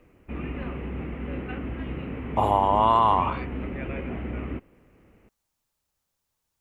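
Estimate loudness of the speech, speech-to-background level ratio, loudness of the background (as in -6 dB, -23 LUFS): -22.0 LUFS, 12.0 dB, -34.0 LUFS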